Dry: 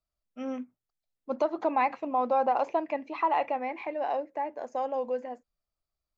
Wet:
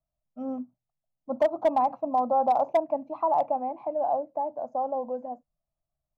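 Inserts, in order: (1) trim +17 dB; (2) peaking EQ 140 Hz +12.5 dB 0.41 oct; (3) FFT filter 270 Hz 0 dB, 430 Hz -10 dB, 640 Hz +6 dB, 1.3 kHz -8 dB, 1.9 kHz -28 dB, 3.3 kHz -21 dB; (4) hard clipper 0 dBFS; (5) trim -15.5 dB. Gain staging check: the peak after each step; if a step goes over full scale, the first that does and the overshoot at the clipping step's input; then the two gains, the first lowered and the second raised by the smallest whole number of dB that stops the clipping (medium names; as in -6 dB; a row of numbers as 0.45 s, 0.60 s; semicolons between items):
+1.5 dBFS, +1.5 dBFS, +3.5 dBFS, 0.0 dBFS, -15.5 dBFS; step 1, 3.5 dB; step 1 +13 dB, step 5 -11.5 dB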